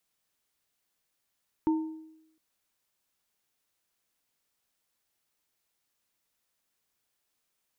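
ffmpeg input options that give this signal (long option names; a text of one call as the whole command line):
ffmpeg -f lavfi -i "aevalsrc='0.0944*pow(10,-3*t/0.85)*sin(2*PI*317*t)+0.0282*pow(10,-3*t/0.51)*sin(2*PI*907*t)':duration=0.71:sample_rate=44100" out.wav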